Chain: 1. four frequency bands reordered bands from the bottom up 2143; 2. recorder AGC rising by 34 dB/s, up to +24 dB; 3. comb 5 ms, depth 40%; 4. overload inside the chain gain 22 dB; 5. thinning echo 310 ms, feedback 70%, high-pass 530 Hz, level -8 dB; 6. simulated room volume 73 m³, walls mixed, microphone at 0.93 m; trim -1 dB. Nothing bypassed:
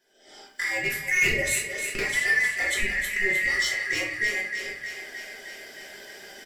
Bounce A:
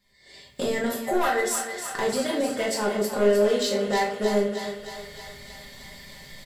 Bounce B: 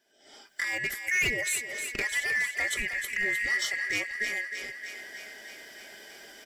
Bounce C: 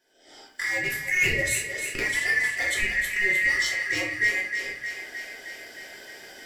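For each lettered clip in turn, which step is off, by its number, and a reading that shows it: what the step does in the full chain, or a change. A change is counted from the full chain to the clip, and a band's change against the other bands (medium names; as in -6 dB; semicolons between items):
1, 2 kHz band -24.0 dB; 6, echo-to-direct 3.5 dB to -6.5 dB; 3, 125 Hz band +2.5 dB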